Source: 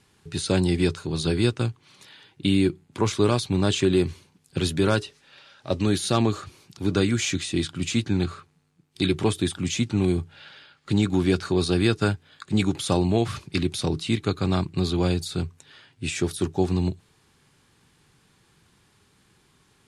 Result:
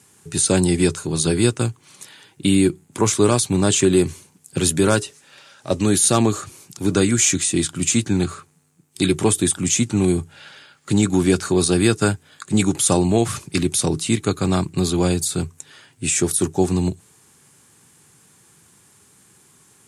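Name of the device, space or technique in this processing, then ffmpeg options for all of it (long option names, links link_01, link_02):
budget condenser microphone: -af "highpass=98,highshelf=frequency=5700:width_type=q:width=1.5:gain=9.5,volume=5dB"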